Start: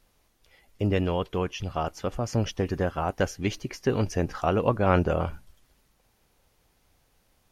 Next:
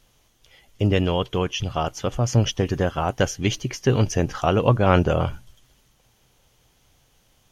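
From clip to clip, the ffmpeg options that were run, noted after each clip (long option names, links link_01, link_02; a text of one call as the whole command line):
ffmpeg -i in.wav -af "equalizer=frequency=125:width_type=o:width=0.33:gain=8,equalizer=frequency=3150:width_type=o:width=0.33:gain=8,equalizer=frequency=6300:width_type=o:width=0.33:gain=7,volume=4dB" out.wav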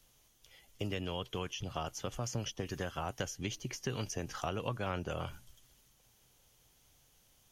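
ffmpeg -i in.wav -filter_complex "[0:a]highshelf=frequency=5500:gain=9.5,acrossover=split=140|1100[link_01][link_02][link_03];[link_01]acompressor=threshold=-36dB:ratio=4[link_04];[link_02]acompressor=threshold=-29dB:ratio=4[link_05];[link_03]acompressor=threshold=-32dB:ratio=4[link_06];[link_04][link_05][link_06]amix=inputs=3:normalize=0,volume=-9dB" out.wav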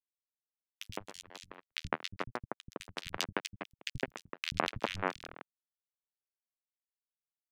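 ffmpeg -i in.wav -filter_complex "[0:a]acrusher=bits=3:mix=0:aa=0.5,acrossover=split=170|2200[link_01][link_02][link_03];[link_01]adelay=80[link_04];[link_02]adelay=160[link_05];[link_04][link_05][link_03]amix=inputs=3:normalize=0,volume=11.5dB" out.wav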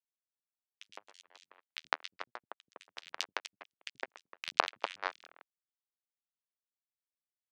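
ffmpeg -i in.wav -af "aeval=exprs='0.299*(cos(1*acos(clip(val(0)/0.299,-1,1)))-cos(1*PI/2))+0.0841*(cos(3*acos(clip(val(0)/0.299,-1,1)))-cos(3*PI/2))':channel_layout=same,highpass=590,lowpass=6700,volume=7.5dB" out.wav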